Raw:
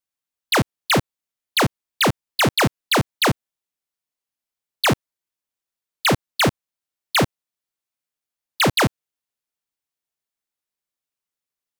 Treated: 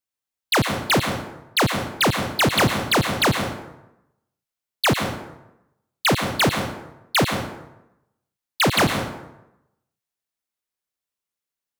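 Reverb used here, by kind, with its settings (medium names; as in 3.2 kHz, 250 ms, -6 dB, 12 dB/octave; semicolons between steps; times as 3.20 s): plate-style reverb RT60 0.88 s, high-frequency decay 0.65×, pre-delay 90 ms, DRR 5 dB; trim -1 dB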